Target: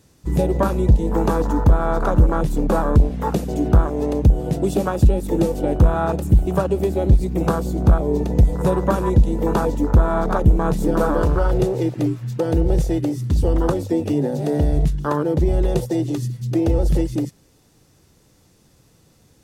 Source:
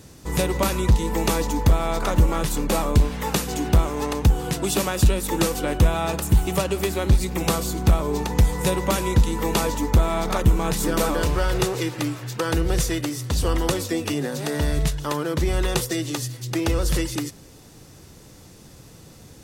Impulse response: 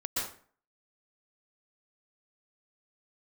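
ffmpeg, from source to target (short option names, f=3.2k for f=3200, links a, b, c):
-filter_complex "[0:a]afwtdn=0.0708,asplit=2[a][b];[b]alimiter=limit=-18dB:level=0:latency=1:release=440,volume=2dB[c];[a][c]amix=inputs=2:normalize=0"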